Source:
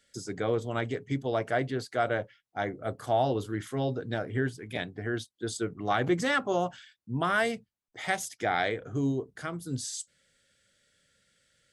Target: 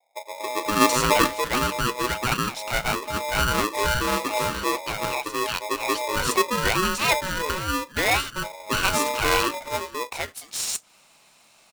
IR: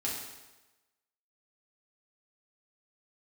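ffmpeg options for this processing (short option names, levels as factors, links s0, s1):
-filter_complex "[0:a]asplit=2[s0][s1];[s1]acompressor=threshold=0.00891:ratio=6,volume=1.41[s2];[s0][s2]amix=inputs=2:normalize=0,acrossover=split=200|720[s3][s4][s5];[s4]adelay=280[s6];[s5]adelay=750[s7];[s3][s6][s7]amix=inputs=3:normalize=0,asplit=3[s8][s9][s10];[s8]afade=t=out:st=0.8:d=0.02[s11];[s9]acontrast=58,afade=t=in:st=0.8:d=0.02,afade=t=out:st=1.26:d=0.02[s12];[s10]afade=t=in:st=1.26:d=0.02[s13];[s11][s12][s13]amix=inputs=3:normalize=0,aeval=exprs='val(0)*sgn(sin(2*PI*740*n/s))':c=same,volume=1.88"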